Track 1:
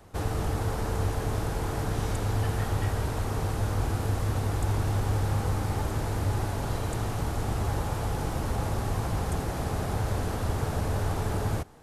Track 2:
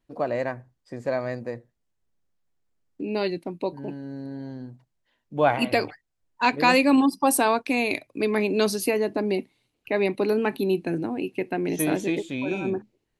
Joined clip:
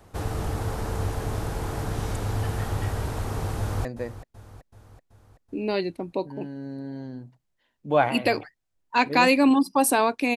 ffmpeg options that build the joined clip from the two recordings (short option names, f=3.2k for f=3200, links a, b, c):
-filter_complex "[0:a]apad=whole_dur=10.36,atrim=end=10.36,atrim=end=3.852[a];[1:a]atrim=start=1.318:end=7.83[b];[a][b]acrossfade=d=0.004:c1=hsin:c2=hsin,asplit=2[c][d];[d]afade=t=in:st=3.58:d=0.01,afade=t=out:st=3.85:d=0.01,aecho=0:1:380|760|1140|1520|1900|2280:0.199526|0.119716|0.0718294|0.0430977|0.0258586|0.0155152[e];[c][e]amix=inputs=2:normalize=0"